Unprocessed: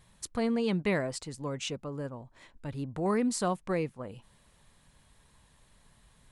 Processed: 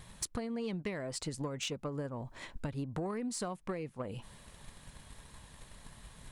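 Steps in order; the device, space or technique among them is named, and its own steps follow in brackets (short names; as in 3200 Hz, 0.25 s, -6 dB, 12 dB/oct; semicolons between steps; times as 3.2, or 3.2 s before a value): drum-bus smash (transient shaper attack +8 dB, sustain +1 dB; compressor 20:1, threshold -40 dBFS, peak gain reduction 21.5 dB; soft clip -34.5 dBFS, distortion -19 dB); gain +7.5 dB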